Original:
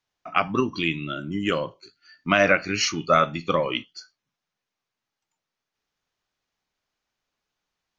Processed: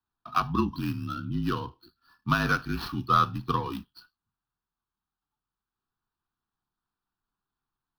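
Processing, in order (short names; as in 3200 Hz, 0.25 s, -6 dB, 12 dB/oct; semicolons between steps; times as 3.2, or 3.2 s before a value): median filter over 15 samples; frequency shift -40 Hz; fixed phaser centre 2100 Hz, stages 6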